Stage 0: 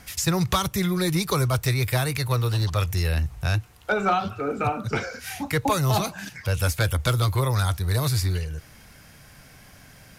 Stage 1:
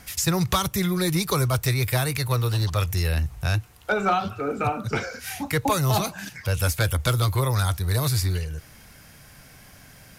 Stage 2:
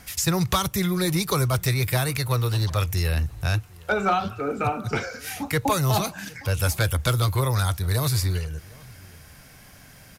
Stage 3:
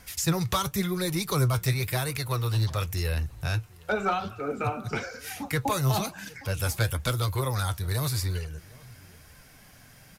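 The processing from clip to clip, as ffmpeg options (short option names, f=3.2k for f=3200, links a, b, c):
-af "highshelf=f=9.4k:g=4.5"
-filter_complex "[0:a]asplit=2[a][b];[b]adelay=758,volume=-23dB,highshelf=f=4k:g=-17.1[c];[a][c]amix=inputs=2:normalize=0"
-af "flanger=delay=1.9:depth=6.8:regen=61:speed=0.96:shape=sinusoidal"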